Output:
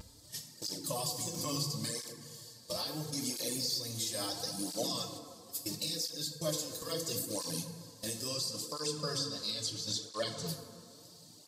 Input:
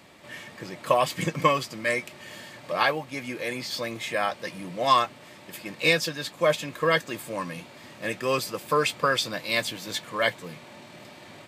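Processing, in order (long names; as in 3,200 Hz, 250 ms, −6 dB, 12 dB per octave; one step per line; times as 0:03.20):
0:08.27–0:10.47: low-pass filter 9,000 Hz → 5,100 Hz 12 dB per octave
noise gate −38 dBFS, range −17 dB
drawn EQ curve 120 Hz 0 dB, 2,300 Hz −19 dB, 4,600 Hz +13 dB
downward compressor 6 to 1, threshold −36 dBFS, peak gain reduction 20 dB
brickwall limiter −29.5 dBFS, peak gain reduction 10.5 dB
upward compression, threshold −58 dBFS
pitch vibrato 0.91 Hz 27 cents
feedback delay network reverb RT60 2.2 s, low-frequency decay 0.85×, high-frequency decay 0.35×, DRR 3 dB
through-zero flanger with one copy inverted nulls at 0.74 Hz, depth 7.4 ms
level +7 dB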